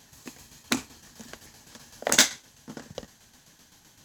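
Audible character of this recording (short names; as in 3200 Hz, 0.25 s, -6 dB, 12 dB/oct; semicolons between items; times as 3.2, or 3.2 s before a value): tremolo saw down 7.8 Hz, depth 60%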